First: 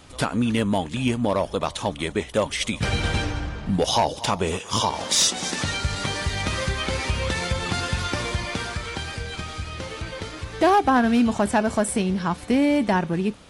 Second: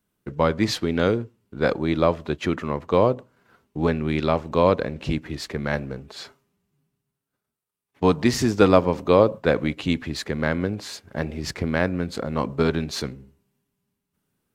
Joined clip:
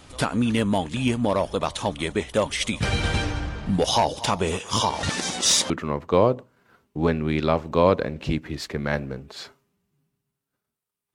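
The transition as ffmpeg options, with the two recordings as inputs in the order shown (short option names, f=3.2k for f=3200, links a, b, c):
-filter_complex "[0:a]apad=whole_dur=11.14,atrim=end=11.14,asplit=2[a][b];[a]atrim=end=5.032[c];[b]atrim=start=5.028:end=5.702,asetpts=PTS-STARTPTS,areverse[d];[1:a]atrim=start=2.498:end=7.94[e];[c][d]acrossfade=d=0.004:c1=hsin:c2=hsin[f];[f][e]acrossfade=d=0.004:c1=hsin:c2=hsin"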